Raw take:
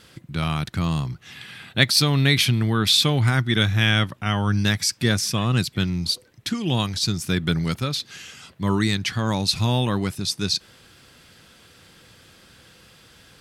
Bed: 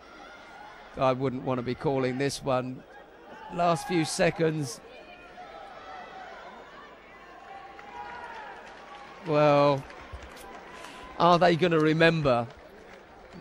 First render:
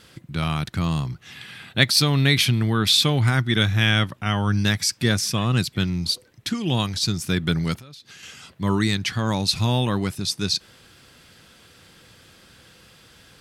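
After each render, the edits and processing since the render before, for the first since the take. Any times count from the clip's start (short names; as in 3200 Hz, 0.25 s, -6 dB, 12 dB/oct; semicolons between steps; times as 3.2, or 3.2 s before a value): 7.75–8.23 compressor 12:1, threshold -40 dBFS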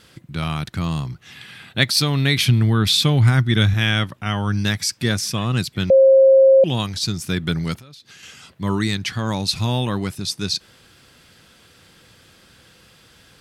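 2.42–3.74 low shelf 170 Hz +8.5 dB; 5.9–6.64 bleep 535 Hz -7.5 dBFS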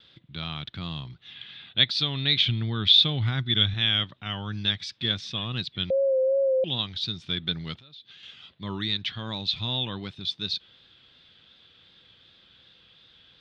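ladder low-pass 3800 Hz, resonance 75%; vibrato 2.7 Hz 47 cents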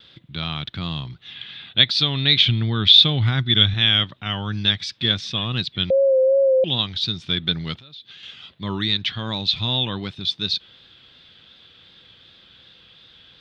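gain +6.5 dB; limiter -1 dBFS, peak gain reduction 2.5 dB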